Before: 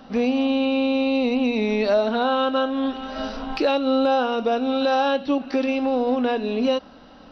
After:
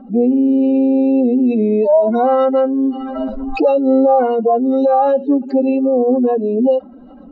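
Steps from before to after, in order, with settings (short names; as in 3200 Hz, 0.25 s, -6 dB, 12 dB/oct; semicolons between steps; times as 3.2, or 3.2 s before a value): spectral contrast raised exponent 2.6; harmoniser +7 st -18 dB; gain +8 dB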